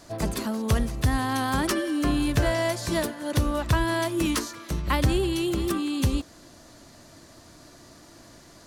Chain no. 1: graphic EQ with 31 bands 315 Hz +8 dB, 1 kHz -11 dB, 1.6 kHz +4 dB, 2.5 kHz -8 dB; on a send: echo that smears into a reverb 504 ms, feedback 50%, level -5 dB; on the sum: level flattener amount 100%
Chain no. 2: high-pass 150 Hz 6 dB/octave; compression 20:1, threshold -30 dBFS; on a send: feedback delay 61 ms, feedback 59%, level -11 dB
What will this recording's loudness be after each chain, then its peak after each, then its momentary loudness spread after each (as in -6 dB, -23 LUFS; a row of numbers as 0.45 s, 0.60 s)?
-16.0 LUFS, -33.5 LUFS; -4.0 dBFS, -17.5 dBFS; 1 LU, 17 LU